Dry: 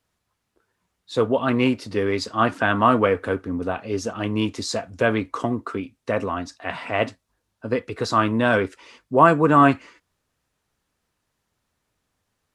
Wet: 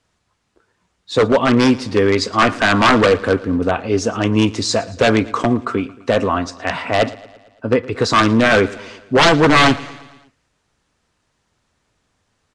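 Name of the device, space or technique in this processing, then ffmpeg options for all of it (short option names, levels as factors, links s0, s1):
synthesiser wavefolder: -filter_complex "[0:a]asettb=1/sr,asplit=3[s0][s1][s2];[s0]atrim=end=6.824[s3];[s1]atrim=start=6.82:end=7.93,asetpts=PTS-STARTPTS,afade=t=in:d=0.004:c=qsin,afade=t=out:st=1.106:d=0.004:c=qsin,highshelf=f=3600:g=-7[s4];[s2]atrim=start=7.926[s5];[s3][s4]acrossfade=d=0.004:c1=hsin:c2=qsin[s6];[s6][s5]acrossfade=d=0.004:c1=qsin:c2=hsin,aeval=exprs='0.2*(abs(mod(val(0)/0.2+3,4)-2)-1)':c=same,lowpass=f=8800:w=0.5412,lowpass=f=8800:w=1.3066,aecho=1:1:113|226|339|452|565:0.1|0.057|0.0325|0.0185|0.0106,volume=2.66"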